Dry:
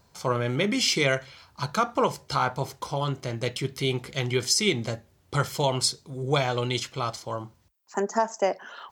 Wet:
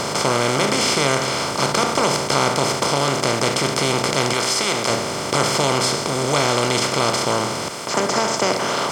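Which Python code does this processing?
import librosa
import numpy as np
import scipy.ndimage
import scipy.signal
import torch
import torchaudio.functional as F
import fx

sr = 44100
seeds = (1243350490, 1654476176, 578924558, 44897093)

y = fx.bin_compress(x, sr, power=0.2)
y = fx.low_shelf(y, sr, hz=340.0, db=-7.5, at=(4.33, 4.9))
y = F.gain(torch.from_numpy(y), -3.0).numpy()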